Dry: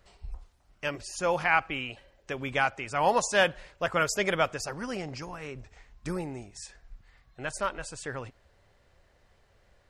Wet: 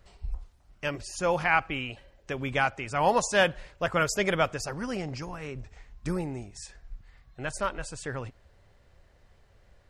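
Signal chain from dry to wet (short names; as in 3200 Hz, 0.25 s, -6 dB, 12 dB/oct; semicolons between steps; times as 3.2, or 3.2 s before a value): low shelf 230 Hz +6 dB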